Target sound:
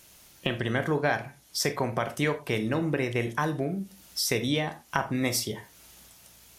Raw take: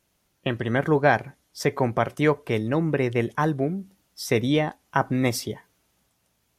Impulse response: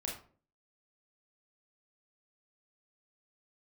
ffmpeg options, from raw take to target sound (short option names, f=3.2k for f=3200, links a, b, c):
-filter_complex "[0:a]highshelf=f=2.1k:g=9.5,acompressor=threshold=-43dB:ratio=2.5,asplit=2[a][b];[1:a]atrim=start_sample=2205,afade=t=out:st=0.18:d=0.01,atrim=end_sample=8379[c];[b][c]afir=irnorm=-1:irlink=0,volume=-4dB[d];[a][d]amix=inputs=2:normalize=0,volume=6.5dB"